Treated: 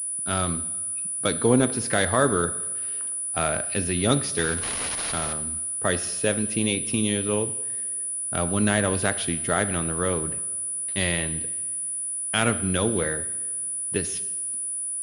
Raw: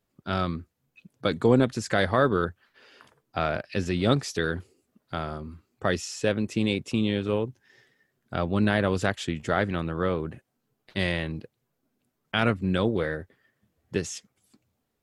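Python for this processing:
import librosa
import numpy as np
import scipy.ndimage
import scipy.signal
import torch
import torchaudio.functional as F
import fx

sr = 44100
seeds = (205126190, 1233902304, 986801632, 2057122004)

y = fx.crossing_spikes(x, sr, level_db=-29.0, at=(4.37, 5.33))
y = fx.high_shelf(y, sr, hz=3600.0, db=10.0)
y = fx.rev_double_slope(y, sr, seeds[0], early_s=0.91, late_s=2.8, knee_db=-19, drr_db=11.0)
y = fx.pwm(y, sr, carrier_hz=9800.0)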